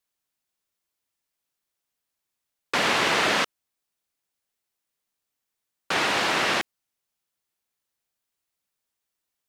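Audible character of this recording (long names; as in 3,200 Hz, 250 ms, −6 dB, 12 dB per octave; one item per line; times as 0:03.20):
background noise floor −84 dBFS
spectral slope −2.0 dB per octave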